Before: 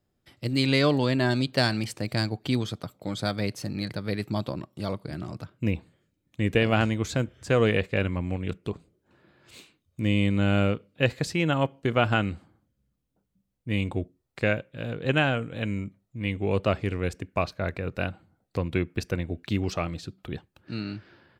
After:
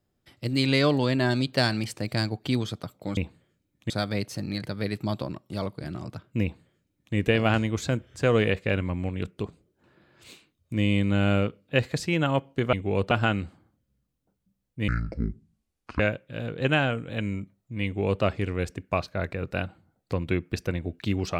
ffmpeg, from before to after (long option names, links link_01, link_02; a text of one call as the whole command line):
ffmpeg -i in.wav -filter_complex "[0:a]asplit=7[link_01][link_02][link_03][link_04][link_05][link_06][link_07];[link_01]atrim=end=3.172[link_08];[link_02]atrim=start=5.688:end=6.422[link_09];[link_03]atrim=start=3.168:end=12.002[link_10];[link_04]atrim=start=16.288:end=16.672[link_11];[link_05]atrim=start=11.998:end=13.774[link_12];[link_06]atrim=start=13.77:end=14.44,asetpts=PTS-STARTPTS,asetrate=26460,aresample=44100[link_13];[link_07]atrim=start=14.436[link_14];[link_08][link_09]acrossfade=duration=0.004:curve1=hsin:curve2=hsin[link_15];[link_15][link_10]acrossfade=duration=0.004:curve1=hsin:curve2=hsin[link_16];[link_16][link_11]acrossfade=duration=0.004:curve1=hsin:curve2=hsin[link_17];[link_17][link_12]acrossfade=duration=0.004:curve1=hsin:curve2=hsin[link_18];[link_18][link_13]acrossfade=duration=0.004:curve1=hsin:curve2=hsin[link_19];[link_19][link_14]acrossfade=duration=0.004:curve1=hsin:curve2=hsin" out.wav